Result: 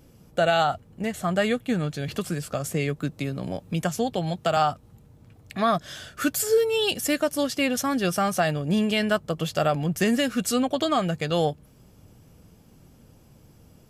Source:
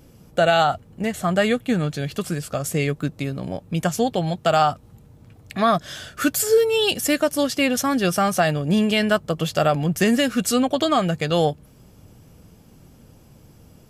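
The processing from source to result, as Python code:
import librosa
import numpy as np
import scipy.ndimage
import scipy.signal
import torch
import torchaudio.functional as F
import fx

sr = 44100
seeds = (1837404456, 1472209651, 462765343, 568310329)

y = fx.band_squash(x, sr, depth_pct=40, at=(2.08, 4.57))
y = y * 10.0 ** (-4.0 / 20.0)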